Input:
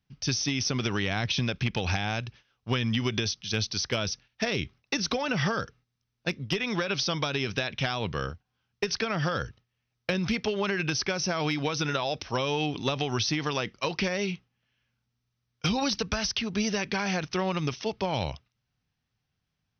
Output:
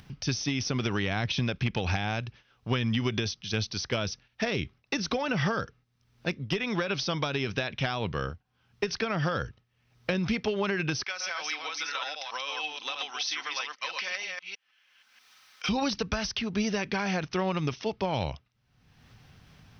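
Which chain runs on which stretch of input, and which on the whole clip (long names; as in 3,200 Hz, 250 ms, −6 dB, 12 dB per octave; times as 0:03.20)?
0:11.03–0:15.69: delay that plays each chunk backwards 160 ms, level −3 dB + high-pass filter 1,300 Hz + comb filter 3.9 ms, depth 31%
whole clip: high-shelf EQ 4,800 Hz −8 dB; upward compression, threshold −33 dBFS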